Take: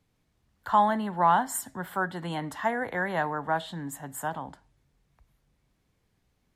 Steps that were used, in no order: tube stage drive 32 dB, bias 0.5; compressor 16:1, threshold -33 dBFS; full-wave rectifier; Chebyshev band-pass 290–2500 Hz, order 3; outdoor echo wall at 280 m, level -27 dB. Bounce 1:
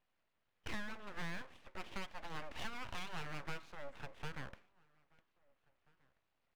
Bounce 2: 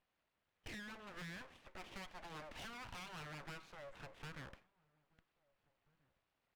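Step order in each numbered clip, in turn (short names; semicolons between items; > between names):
compressor > Chebyshev band-pass > tube stage > outdoor echo > full-wave rectifier; compressor > Chebyshev band-pass > full-wave rectifier > tube stage > outdoor echo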